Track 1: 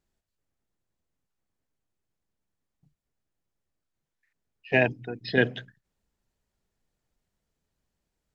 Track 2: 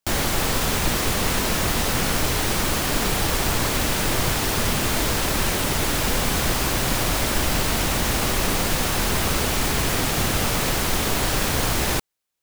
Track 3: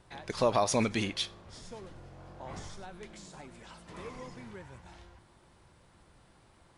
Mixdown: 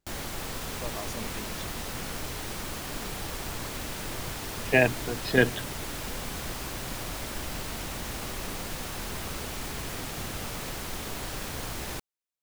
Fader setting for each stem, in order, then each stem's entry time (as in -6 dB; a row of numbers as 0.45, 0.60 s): +1.0, -13.5, -13.0 dB; 0.00, 0.00, 0.40 s